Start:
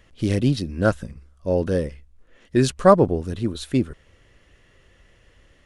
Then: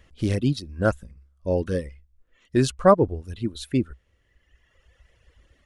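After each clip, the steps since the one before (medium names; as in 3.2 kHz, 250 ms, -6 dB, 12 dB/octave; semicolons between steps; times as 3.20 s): reverb removal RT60 1.8 s; peaking EQ 63 Hz +9.5 dB 0.56 oct; trim -2 dB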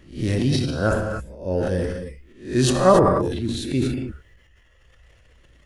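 reverse spectral sustain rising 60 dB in 0.38 s; gated-style reverb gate 310 ms flat, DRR 4.5 dB; transient shaper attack -2 dB, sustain +8 dB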